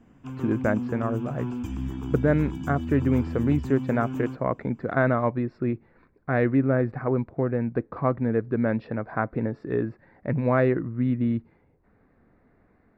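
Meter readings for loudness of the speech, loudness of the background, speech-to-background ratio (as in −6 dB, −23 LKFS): −26.0 LKFS, −33.0 LKFS, 7.0 dB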